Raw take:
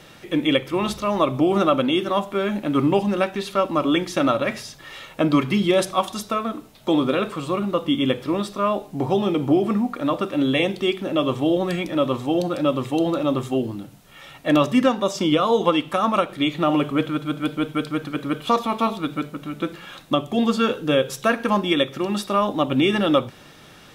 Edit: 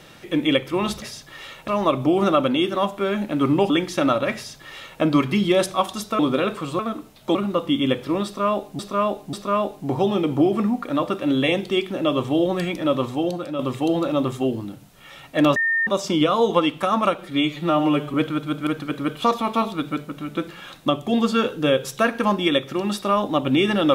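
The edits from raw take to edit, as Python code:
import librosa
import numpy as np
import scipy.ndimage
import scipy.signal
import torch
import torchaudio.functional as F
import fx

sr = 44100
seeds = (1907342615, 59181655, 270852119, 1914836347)

y = fx.edit(x, sr, fx.cut(start_s=3.04, length_s=0.85),
    fx.duplicate(start_s=4.54, length_s=0.66, to_s=1.02),
    fx.move(start_s=6.38, length_s=0.56, to_s=7.54),
    fx.repeat(start_s=8.44, length_s=0.54, count=3),
    fx.fade_out_to(start_s=12.19, length_s=0.51, floor_db=-9.0),
    fx.bleep(start_s=14.67, length_s=0.31, hz=1820.0, db=-17.5),
    fx.stretch_span(start_s=16.29, length_s=0.64, factor=1.5),
    fx.cut(start_s=17.46, length_s=0.46), tone=tone)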